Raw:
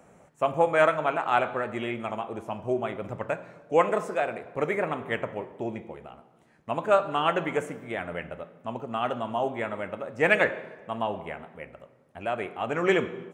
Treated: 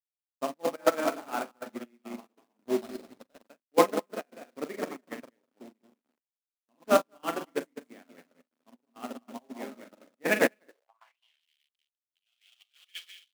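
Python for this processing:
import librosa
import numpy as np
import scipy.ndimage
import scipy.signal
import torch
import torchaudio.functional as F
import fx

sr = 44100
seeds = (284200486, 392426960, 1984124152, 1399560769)

y = fx.air_absorb(x, sr, metres=170.0, at=(0.64, 1.6))
y = fx.doubler(y, sr, ms=42.0, db=-4.0)
y = y + 10.0 ** (-4.0 / 20.0) * np.pad(y, (int(201 * sr / 1000.0), 0))[:len(y)]
y = fx.quant_companded(y, sr, bits=4)
y = scipy.signal.sosfilt(scipy.signal.butter(2, 56.0, 'highpass', fs=sr, output='sos'), y)
y = np.sign(y) * np.maximum(np.abs(y) - 10.0 ** (-37.0 / 20.0), 0.0)
y = fx.step_gate(y, sr, bpm=139, pattern='x..xx.x.xxxxxx.x', floor_db=-12.0, edge_ms=4.5)
y = fx.filter_sweep_highpass(y, sr, from_hz=250.0, to_hz=3100.0, start_s=10.65, end_s=11.2, q=5.7)
y = fx.sample_hold(y, sr, seeds[0], rate_hz=4600.0, jitter_pct=20, at=(2.8, 3.43), fade=0.02)
y = fx.high_shelf(y, sr, hz=4800.0, db=-11.5, at=(10.86, 11.41))
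y = fx.upward_expand(y, sr, threshold_db=-36.0, expansion=2.5)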